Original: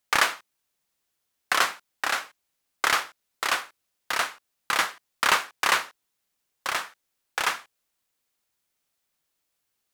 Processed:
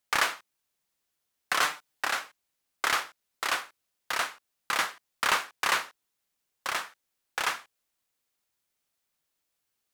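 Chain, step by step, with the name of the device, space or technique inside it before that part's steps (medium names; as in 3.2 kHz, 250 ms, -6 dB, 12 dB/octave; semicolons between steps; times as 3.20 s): parallel distortion (in parallel at -5 dB: hard clipper -21 dBFS, distortion -7 dB); 1.62–2.05 s: on the sum: comb 6.7 ms, depth 90%; trim -6.5 dB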